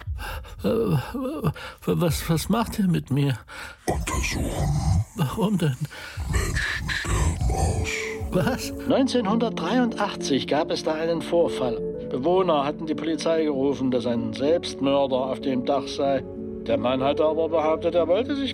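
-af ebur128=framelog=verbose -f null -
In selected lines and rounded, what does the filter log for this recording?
Integrated loudness:
  I:         -24.5 LUFS
  Threshold: -34.5 LUFS
Loudness range:
  LRA:         2.0 LU
  Threshold: -44.5 LUFS
  LRA low:   -25.6 LUFS
  LRA high:  -23.7 LUFS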